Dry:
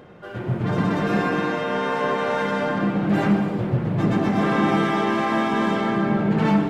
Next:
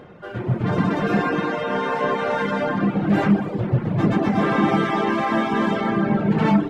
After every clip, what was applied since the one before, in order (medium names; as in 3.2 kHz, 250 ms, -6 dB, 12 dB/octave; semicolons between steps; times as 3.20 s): reverb removal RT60 0.76 s; treble shelf 5.1 kHz -6 dB; trim +3 dB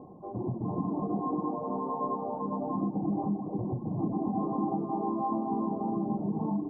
compression, threshold -24 dBFS, peak gain reduction 11.5 dB; rippled Chebyshev low-pass 1.1 kHz, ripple 9 dB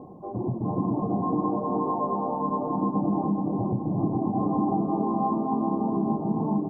feedback delay 422 ms, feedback 45%, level -5 dB; trim +4.5 dB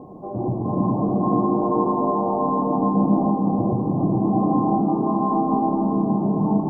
algorithmic reverb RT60 1.3 s, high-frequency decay 0.6×, pre-delay 30 ms, DRR 0.5 dB; trim +3 dB